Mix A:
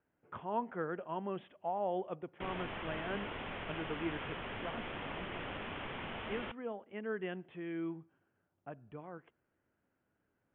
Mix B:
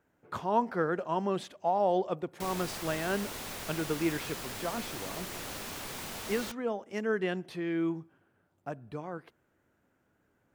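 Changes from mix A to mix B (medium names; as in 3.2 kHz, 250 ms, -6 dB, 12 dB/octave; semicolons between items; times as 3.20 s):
speech +8.5 dB; master: remove steep low-pass 3.3 kHz 96 dB/octave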